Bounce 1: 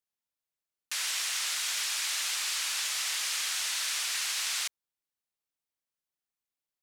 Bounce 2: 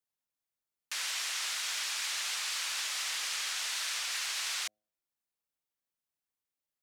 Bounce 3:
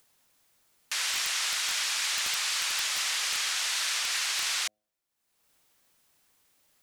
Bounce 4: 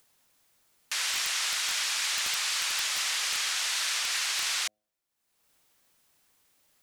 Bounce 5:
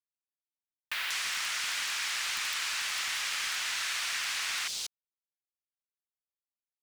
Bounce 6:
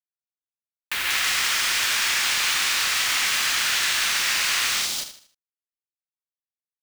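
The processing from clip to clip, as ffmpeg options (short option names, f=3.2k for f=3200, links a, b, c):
-filter_complex "[0:a]equalizer=f=4.1k:w=0.39:g=-2.5,bandreject=f=106.1:t=h:w=4,bandreject=f=212.2:t=h:w=4,bandreject=f=318.3:t=h:w=4,bandreject=f=424.4:t=h:w=4,bandreject=f=530.5:t=h:w=4,bandreject=f=636.6:t=h:w=4,bandreject=f=742.7:t=h:w=4,acrossover=split=1100|7300[a][b][c];[c]alimiter=level_in=13.5dB:limit=-24dB:level=0:latency=1:release=402,volume=-13.5dB[d];[a][b][d]amix=inputs=3:normalize=0"
-af "equalizer=f=15k:t=o:w=0.2:g=-5,acompressor=mode=upward:threshold=-57dB:ratio=2.5,aeval=exprs='(mod(15*val(0)+1,2)-1)/15':c=same,volume=5.5dB"
-af anull
-filter_complex "[0:a]acrossover=split=460|3700[a][b][c];[a]adelay=110[d];[c]adelay=190[e];[d][b][e]amix=inputs=3:normalize=0,acrusher=bits=6:mix=0:aa=0.000001,acrossover=split=1100|4200[f][g][h];[f]acompressor=threshold=-55dB:ratio=4[i];[g]acompressor=threshold=-35dB:ratio=4[j];[h]acompressor=threshold=-43dB:ratio=4[k];[i][j][k]amix=inputs=3:normalize=0,volume=3dB"
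-filter_complex "[0:a]asplit=2[a][b];[b]aecho=0:1:139.9|172:0.794|0.708[c];[a][c]amix=inputs=2:normalize=0,acrusher=bits=5:mix=0:aa=0.000001,asplit=2[d][e];[e]aecho=0:1:77|154|231|308:0.316|0.114|0.041|0.0148[f];[d][f]amix=inputs=2:normalize=0,volume=6.5dB"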